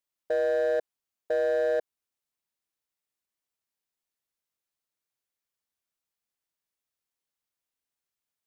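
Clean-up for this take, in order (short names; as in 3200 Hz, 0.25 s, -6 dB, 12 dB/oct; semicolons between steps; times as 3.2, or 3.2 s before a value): clip repair -22 dBFS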